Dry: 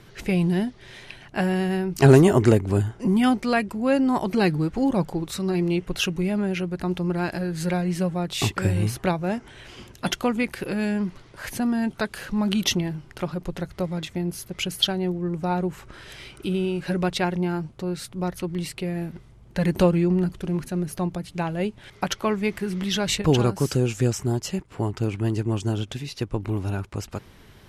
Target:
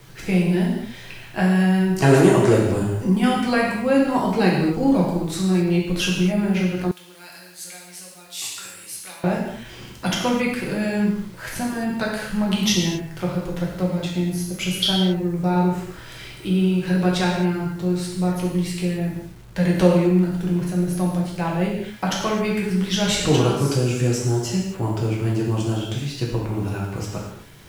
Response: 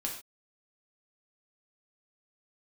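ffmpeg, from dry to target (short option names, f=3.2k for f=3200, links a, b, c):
-filter_complex "[1:a]atrim=start_sample=2205,asetrate=25137,aresample=44100[a];[0:a][a]afir=irnorm=-1:irlink=0,acrossover=split=230|3000[b][c][d];[b]acompressor=threshold=-18dB:ratio=6[e];[e][c][d]amix=inputs=3:normalize=0,asettb=1/sr,asplit=3[f][g][h];[f]atrim=end=6.914[i];[g]atrim=start=6.91:end=9.24,asetpts=PTS-STARTPTS,afade=t=in:d=0.004:c=qsin,afade=t=out:st=2.326:d=0.004:c=qsin,aderivative[j];[h]atrim=start=9.236[k];[i][j]acrossfade=d=0.004:c1=hsin:c2=qsin[l];[l][k]acrossfade=d=0.004:c1=qsin:c2=hsin,acrusher=bits=7:mix=0:aa=0.000001,volume=-2.5dB"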